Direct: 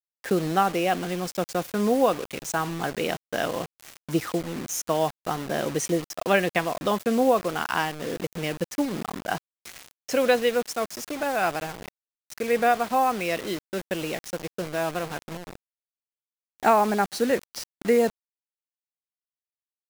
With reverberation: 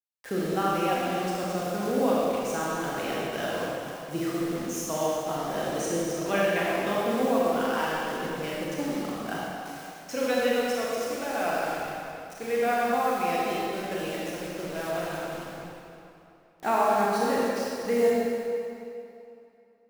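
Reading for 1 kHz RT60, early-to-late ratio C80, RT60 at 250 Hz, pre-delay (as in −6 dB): 2.9 s, −2.5 dB, 2.7 s, 26 ms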